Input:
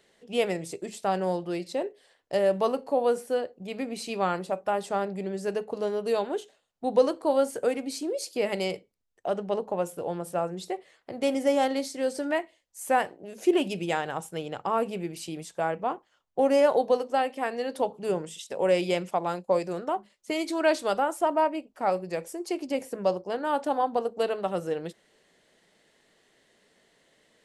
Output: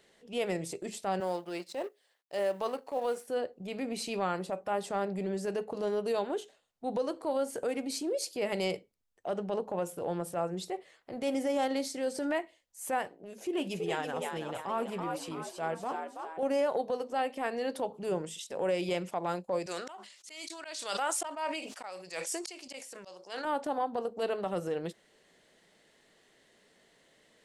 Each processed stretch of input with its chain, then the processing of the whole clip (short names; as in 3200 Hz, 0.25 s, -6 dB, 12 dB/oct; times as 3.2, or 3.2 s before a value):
1.2–3.28 G.711 law mismatch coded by A + HPF 490 Hz 6 dB/oct
13.08–16.43 frequency-shifting echo 0.328 s, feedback 45%, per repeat +77 Hz, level -6.5 dB + flange 1 Hz, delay 3.8 ms, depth 2.7 ms, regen -65%
19.66–23.45 weighting filter ITU-R 468 + auto swell 0.462 s + sustainer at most 59 dB/s
whole clip: compressor, threshold -25 dBFS; transient shaper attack -7 dB, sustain -1 dB